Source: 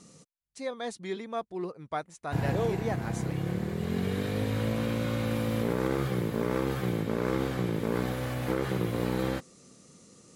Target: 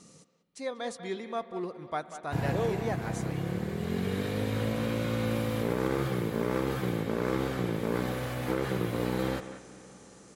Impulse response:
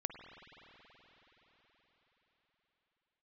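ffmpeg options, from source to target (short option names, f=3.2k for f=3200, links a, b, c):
-filter_complex "[0:a]asplit=2[a][b];[b]adelay=190,highpass=300,lowpass=3.4k,asoftclip=type=hard:threshold=-24.5dB,volume=-11dB[c];[a][c]amix=inputs=2:normalize=0,asplit=2[d][e];[1:a]atrim=start_sample=2205,lowshelf=f=140:g=-11.5[f];[e][f]afir=irnorm=-1:irlink=0,volume=-6dB[g];[d][g]amix=inputs=2:normalize=0,volume=-3dB"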